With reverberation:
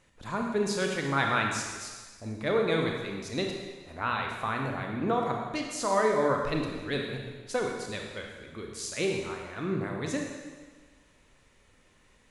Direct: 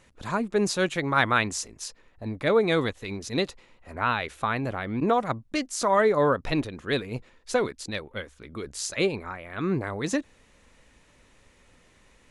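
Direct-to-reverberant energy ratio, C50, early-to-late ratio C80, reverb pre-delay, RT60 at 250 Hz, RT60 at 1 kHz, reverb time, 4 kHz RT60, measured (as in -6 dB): 1.0 dB, 2.5 dB, 4.0 dB, 27 ms, 1.4 s, 1.4 s, 1.4 s, 1.4 s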